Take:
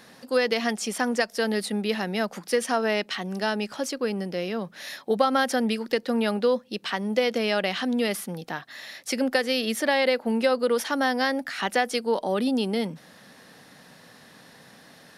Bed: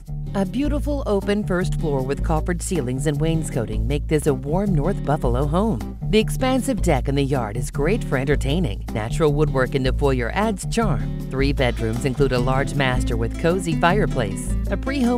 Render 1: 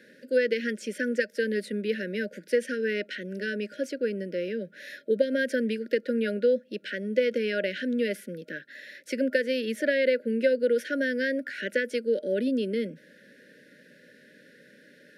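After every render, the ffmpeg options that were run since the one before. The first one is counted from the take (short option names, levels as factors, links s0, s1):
-filter_complex "[0:a]afftfilt=real='re*(1-between(b*sr/4096,620,1400))':imag='im*(1-between(b*sr/4096,620,1400))':win_size=4096:overlap=0.75,acrossover=split=200 2300:gain=0.141 1 0.224[s0][s1][s2];[s0][s1][s2]amix=inputs=3:normalize=0"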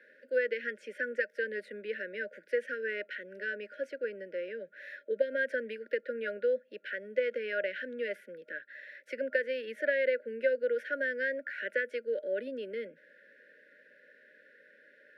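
-filter_complex "[0:a]highpass=150,acrossover=split=520 2300:gain=0.0891 1 0.0891[s0][s1][s2];[s0][s1][s2]amix=inputs=3:normalize=0"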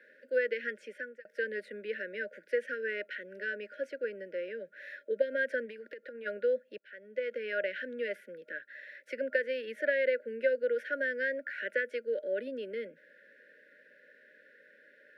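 -filter_complex "[0:a]asplit=3[s0][s1][s2];[s0]afade=t=out:st=5.65:d=0.02[s3];[s1]acompressor=threshold=0.00891:ratio=8:attack=3.2:release=140:knee=1:detection=peak,afade=t=in:st=5.65:d=0.02,afade=t=out:st=6.25:d=0.02[s4];[s2]afade=t=in:st=6.25:d=0.02[s5];[s3][s4][s5]amix=inputs=3:normalize=0,asplit=3[s6][s7][s8];[s6]atrim=end=1.25,asetpts=PTS-STARTPTS,afade=t=out:st=0.79:d=0.46[s9];[s7]atrim=start=1.25:end=6.78,asetpts=PTS-STARTPTS,afade=t=in:d=0.004:c=hsin,afade=t=out:st=5.526:d=0.004:c=hsin:silence=0.0749894[s10];[s8]atrim=start=6.78,asetpts=PTS-STARTPTS,afade=t=in:d=0.78:silence=0.0749894[s11];[s9][s10][s11]concat=n=3:v=0:a=1"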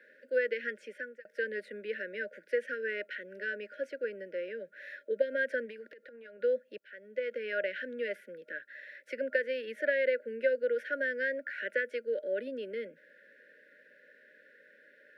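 -filter_complex "[0:a]asplit=3[s0][s1][s2];[s0]afade=t=out:st=5.86:d=0.02[s3];[s1]acompressor=threshold=0.00447:ratio=16:attack=3.2:release=140:knee=1:detection=peak,afade=t=in:st=5.86:d=0.02,afade=t=out:st=6.39:d=0.02[s4];[s2]afade=t=in:st=6.39:d=0.02[s5];[s3][s4][s5]amix=inputs=3:normalize=0"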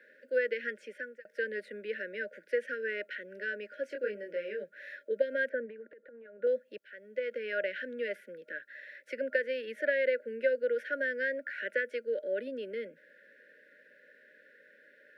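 -filter_complex "[0:a]asettb=1/sr,asplit=3[s0][s1][s2];[s0]atrim=end=3.874[s3];[s1]atrim=start=3.87:end=4.64,asetpts=PTS-STARTPTS,afade=t=in:d=0.004:c=qsin,afade=t=out:st=0.766:d=0.004:c=qsin,asplit=2[s4][s5];[s5]adelay=24,volume=0.708[s6];[s4][s6]amix=inputs=2:normalize=0,atrim=end_sample=33957[s7];[s2]atrim=start=4.636[s8];[s3][s7]acrossfade=d=0.004:c1=hsin:c2=qsin[s9];[s9][s8]acrossfade=d=0.004:c1=qsin:c2=hsin,asettb=1/sr,asplit=3[s10][s11][s12];[s10]atrim=end=5.494[s13];[s11]atrim=start=5.49:end=6.47,asetpts=PTS-STARTPTS,afade=t=in:d=0.004:c=qsin,afade=t=out:st=0.976:d=0.004:c=qsin,lowpass=1400[s14];[s12]atrim=start=6.466[s15];[s13][s14]acrossfade=d=0.004:c1=hsin:c2=qsin[s16];[s16][s15]acrossfade=d=0.004:c1=qsin:c2=hsin"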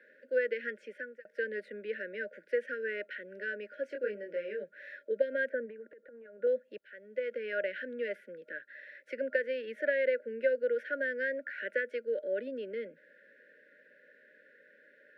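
-af "highshelf=f=4100:g=-10"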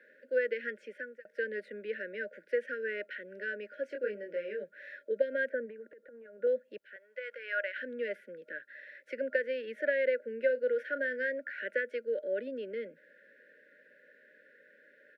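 -filter_complex "[0:a]asettb=1/sr,asplit=3[s0][s1][s2];[s0]atrim=end=6.964[s3];[s1]atrim=start=6.96:end=7.77,asetpts=PTS-STARTPTS,afade=t=in:d=0.004:c=qsin,afade=t=out:st=0.806:d=0.004:c=qsin,highpass=f=970:t=q:w=4.2[s4];[s2]atrim=start=7.766[s5];[s3][s4]acrossfade=d=0.004:c1=hsin:c2=qsin[s6];[s6][s5]acrossfade=d=0.004:c1=qsin:c2=hsin,asplit=3[s7][s8][s9];[s7]afade=t=out:st=10.48:d=0.02[s10];[s8]asplit=2[s11][s12];[s12]adelay=36,volume=0.211[s13];[s11][s13]amix=inputs=2:normalize=0,afade=t=in:st=10.48:d=0.02,afade=t=out:st=11.31:d=0.02[s14];[s9]afade=t=in:st=11.31:d=0.02[s15];[s10][s14][s15]amix=inputs=3:normalize=0"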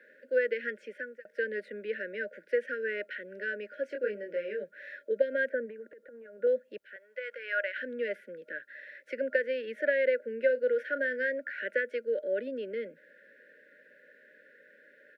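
-af "volume=1.33"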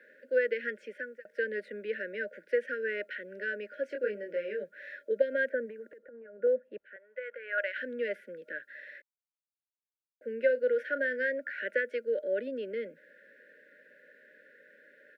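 -filter_complex "[0:a]asettb=1/sr,asplit=3[s0][s1][s2];[s0]atrim=end=5.984[s3];[s1]atrim=start=5.98:end=7.58,asetpts=PTS-STARTPTS,afade=t=in:d=0.004:c=qsin,afade=t=out:st=1.596:d=0.004:c=qsin,lowpass=1900[s4];[s2]atrim=start=7.576[s5];[s3][s4]acrossfade=d=0.004:c1=hsin:c2=qsin[s6];[s6][s5]acrossfade=d=0.004:c1=qsin:c2=hsin,asplit=3[s7][s8][s9];[s7]atrim=end=9.02,asetpts=PTS-STARTPTS,afade=t=out:st=9.016:d=0.004:c=hsin[s10];[s8]atrim=start=9.02:end=10.21,asetpts=PTS-STARTPTS,volume=0[s11];[s9]atrim=start=10.21,asetpts=PTS-STARTPTS,afade=t=in:d=0.004:c=hsin[s12];[s10][s11][s12]concat=n=3:v=0:a=1"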